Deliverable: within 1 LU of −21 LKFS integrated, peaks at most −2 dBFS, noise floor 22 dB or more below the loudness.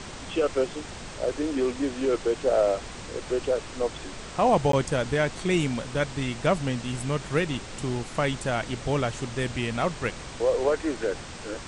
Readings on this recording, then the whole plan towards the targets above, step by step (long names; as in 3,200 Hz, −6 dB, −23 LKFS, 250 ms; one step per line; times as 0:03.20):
number of dropouts 1; longest dropout 13 ms; background noise floor −40 dBFS; target noise floor −50 dBFS; integrated loudness −27.5 LKFS; sample peak −9.5 dBFS; target loudness −21.0 LKFS
→ repair the gap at 0:04.72, 13 ms
noise reduction from a noise print 10 dB
level +6.5 dB